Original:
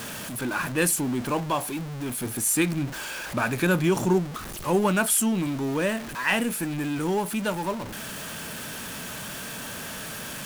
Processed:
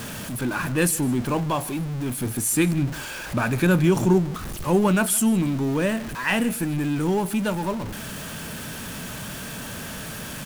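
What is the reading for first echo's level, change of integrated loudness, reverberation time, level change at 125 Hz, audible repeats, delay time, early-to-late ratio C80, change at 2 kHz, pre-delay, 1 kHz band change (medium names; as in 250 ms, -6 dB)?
-20.0 dB, +2.5 dB, no reverb, +6.0 dB, 1, 157 ms, no reverb, 0.0 dB, no reverb, +0.5 dB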